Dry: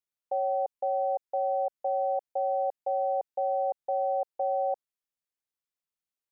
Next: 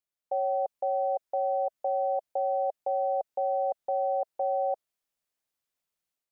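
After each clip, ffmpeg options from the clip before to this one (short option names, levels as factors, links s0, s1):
-af "equalizer=f=640:w=4.3:g=4.5,dynaudnorm=f=290:g=3:m=2.24,alimiter=limit=0.1:level=0:latency=1:release=19,volume=0.841"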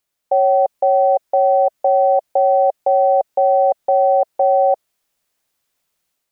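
-af "acontrast=57,volume=2.51"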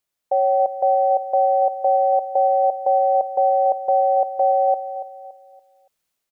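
-af "aecho=1:1:284|568|852|1136:0.251|0.0879|0.0308|0.0108,volume=0.631"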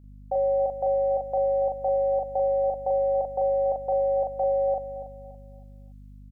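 -filter_complex "[0:a]aeval=exprs='val(0)+0.00794*(sin(2*PI*50*n/s)+sin(2*PI*2*50*n/s)/2+sin(2*PI*3*50*n/s)/3+sin(2*PI*4*50*n/s)/4+sin(2*PI*5*50*n/s)/5)':c=same,asplit=2[s0][s1];[s1]adelay=40,volume=0.75[s2];[s0][s2]amix=inputs=2:normalize=0,volume=0.422"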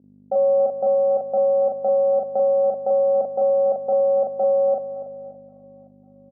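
-af "aeval=exprs='if(lt(val(0),0),0.708*val(0),val(0))':c=same,asuperpass=centerf=370:order=4:qfactor=0.85,aecho=1:1:546|1092|1638:0.0668|0.0327|0.016,volume=2.66"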